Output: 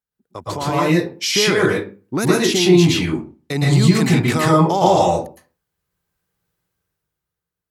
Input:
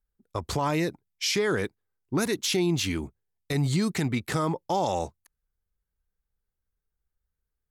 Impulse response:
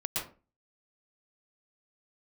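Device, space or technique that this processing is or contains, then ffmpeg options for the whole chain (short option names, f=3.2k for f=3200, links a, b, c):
far laptop microphone: -filter_complex "[1:a]atrim=start_sample=2205[a];[0:a][a]afir=irnorm=-1:irlink=0,highpass=130,dynaudnorm=f=110:g=17:m=12.5dB,asettb=1/sr,asplit=3[b][c][d];[b]atrim=end=2.304[e];[c]atrim=start=2.3:end=3.73,asetpts=PTS-STARTPTS,afade=t=in:d=0.004:c=qsin,afade=t=out:st=1.426:d=0.004:c=qsin,highshelf=f=12k:g=-8.5[f];[d]atrim=start=3.726[g];[e][f]acrossfade=d=0.004:c1=hsin:c2=qsin[h];[h][g]acrossfade=d=0.004:c1=qsin:c2=hsin"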